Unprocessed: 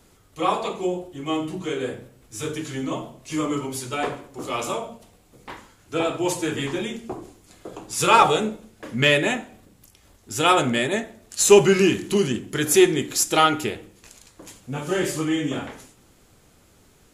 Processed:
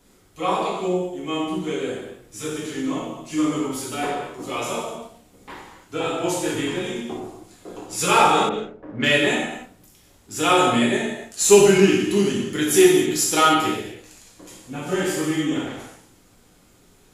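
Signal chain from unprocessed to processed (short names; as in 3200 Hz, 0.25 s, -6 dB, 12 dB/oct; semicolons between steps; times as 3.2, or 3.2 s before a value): non-linear reverb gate 0.33 s falling, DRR -4 dB; 8.49–9.1 low-pass opened by the level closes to 510 Hz, open at -14 dBFS; gain -4.5 dB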